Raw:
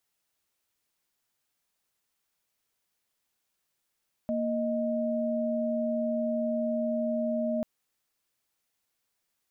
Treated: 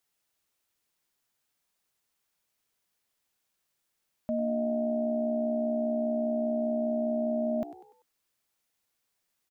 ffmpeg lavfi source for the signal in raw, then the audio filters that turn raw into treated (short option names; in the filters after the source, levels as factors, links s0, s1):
-f lavfi -i "aevalsrc='0.0355*(sin(2*PI*233.08*t)+sin(2*PI*622.25*t))':d=3.34:s=44100"
-filter_complex "[0:a]asplit=5[s0][s1][s2][s3][s4];[s1]adelay=97,afreqshift=65,volume=0.188[s5];[s2]adelay=194,afreqshift=130,volume=0.0776[s6];[s3]adelay=291,afreqshift=195,volume=0.0316[s7];[s4]adelay=388,afreqshift=260,volume=0.013[s8];[s0][s5][s6][s7][s8]amix=inputs=5:normalize=0"